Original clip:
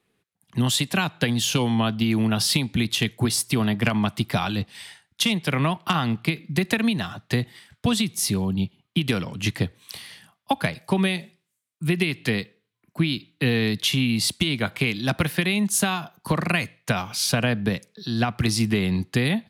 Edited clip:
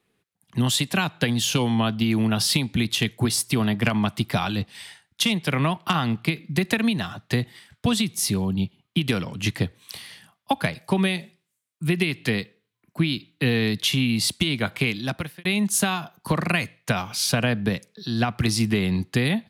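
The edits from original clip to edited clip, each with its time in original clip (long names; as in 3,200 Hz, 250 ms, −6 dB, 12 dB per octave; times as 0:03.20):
0:14.89–0:15.45: fade out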